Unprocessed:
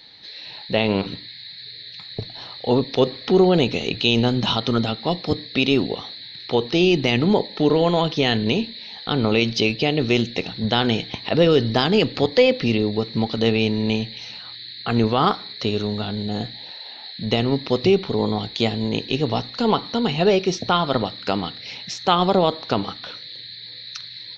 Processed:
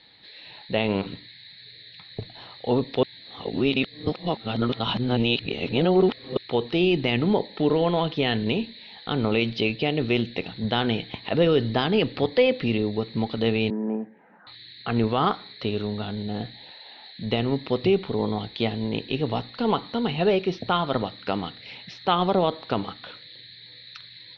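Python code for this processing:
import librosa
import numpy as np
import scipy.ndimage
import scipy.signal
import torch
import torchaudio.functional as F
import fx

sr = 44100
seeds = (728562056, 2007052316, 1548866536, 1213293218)

y = fx.cheby1_bandpass(x, sr, low_hz=180.0, high_hz=1600.0, order=4, at=(13.7, 14.47))
y = fx.edit(y, sr, fx.reverse_span(start_s=3.03, length_s=3.34), tone=tone)
y = scipy.signal.sosfilt(scipy.signal.butter(4, 3700.0, 'lowpass', fs=sr, output='sos'), y)
y = F.gain(torch.from_numpy(y), -4.0).numpy()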